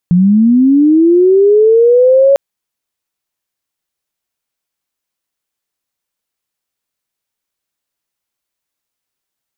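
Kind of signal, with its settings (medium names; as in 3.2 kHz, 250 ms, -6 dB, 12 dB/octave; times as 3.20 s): sweep linear 170 Hz -> 560 Hz -5 dBFS -> -4 dBFS 2.25 s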